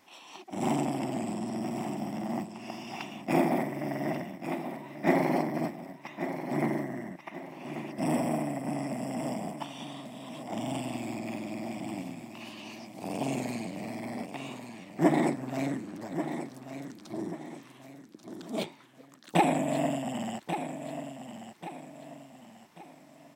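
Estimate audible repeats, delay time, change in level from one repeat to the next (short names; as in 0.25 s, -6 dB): 3, 1.137 s, -8.5 dB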